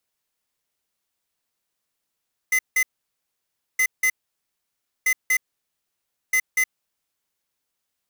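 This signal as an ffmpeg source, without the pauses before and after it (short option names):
-f lavfi -i "aevalsrc='0.112*(2*lt(mod(2040*t,1),0.5)-1)*clip(min(mod(mod(t,1.27),0.24),0.07-mod(mod(t,1.27),0.24))/0.005,0,1)*lt(mod(t,1.27),0.48)':d=5.08:s=44100"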